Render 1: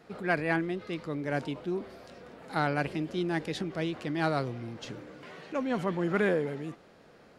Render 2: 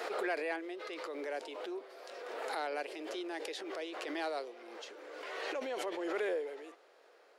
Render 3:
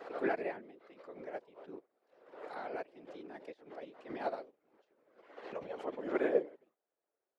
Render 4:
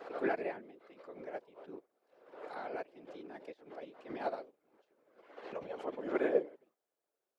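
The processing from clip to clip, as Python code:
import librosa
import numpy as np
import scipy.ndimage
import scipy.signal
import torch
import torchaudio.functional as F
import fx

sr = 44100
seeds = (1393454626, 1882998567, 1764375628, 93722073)

y1 = scipy.signal.sosfilt(scipy.signal.butter(6, 380.0, 'highpass', fs=sr, output='sos'), x)
y1 = fx.dynamic_eq(y1, sr, hz=1300.0, q=1.2, threshold_db=-44.0, ratio=4.0, max_db=-7)
y1 = fx.pre_swell(y1, sr, db_per_s=26.0)
y1 = F.gain(torch.from_numpy(y1), -5.0).numpy()
y2 = fx.lowpass(y1, sr, hz=1100.0, slope=6)
y2 = fx.whisperise(y2, sr, seeds[0])
y2 = fx.upward_expand(y2, sr, threshold_db=-55.0, expansion=2.5)
y2 = F.gain(torch.from_numpy(y2), 8.0).numpy()
y3 = fx.notch(y2, sr, hz=1900.0, q=27.0)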